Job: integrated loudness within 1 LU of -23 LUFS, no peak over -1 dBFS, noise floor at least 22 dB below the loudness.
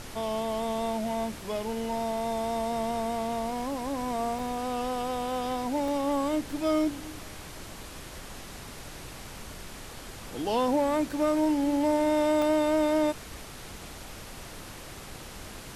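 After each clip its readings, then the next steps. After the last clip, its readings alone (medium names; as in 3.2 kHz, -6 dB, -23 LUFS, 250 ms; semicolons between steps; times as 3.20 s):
dropouts 3; longest dropout 2.2 ms; noise floor -44 dBFS; noise floor target -51 dBFS; loudness -28.5 LUFS; peak level -16.0 dBFS; loudness target -23.0 LUFS
-> interpolate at 4.39/5.88/12.42 s, 2.2 ms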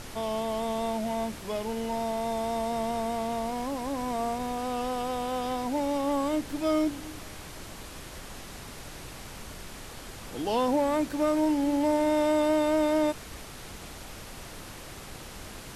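dropouts 0; noise floor -44 dBFS; noise floor target -51 dBFS
-> noise print and reduce 7 dB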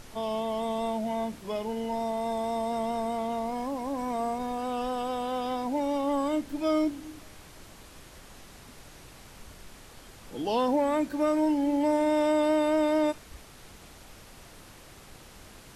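noise floor -51 dBFS; loudness -28.5 LUFS; peak level -16.5 dBFS; loudness target -23.0 LUFS
-> trim +5.5 dB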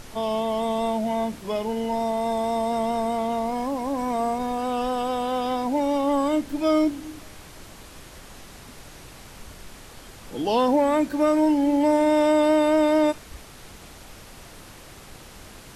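loudness -23.0 LUFS; peak level -11.0 dBFS; noise floor -45 dBFS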